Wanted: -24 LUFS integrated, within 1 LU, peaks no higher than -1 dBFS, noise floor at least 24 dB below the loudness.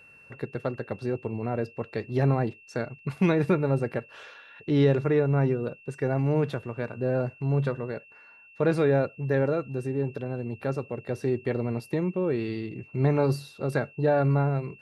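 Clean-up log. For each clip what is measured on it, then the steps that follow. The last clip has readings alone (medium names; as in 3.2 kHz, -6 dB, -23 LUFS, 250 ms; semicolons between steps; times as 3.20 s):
steady tone 2.7 kHz; tone level -51 dBFS; loudness -27.5 LUFS; peak level -11.5 dBFS; loudness target -24.0 LUFS
-> band-stop 2.7 kHz, Q 30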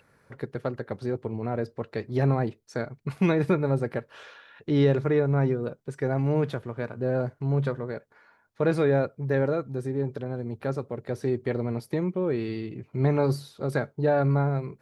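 steady tone not found; loudness -27.5 LUFS; peak level -11.5 dBFS; loudness target -24.0 LUFS
-> trim +3.5 dB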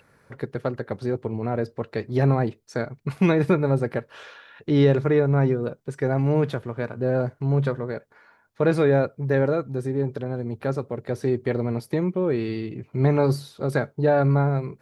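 loudness -24.0 LUFS; peak level -8.0 dBFS; noise floor -62 dBFS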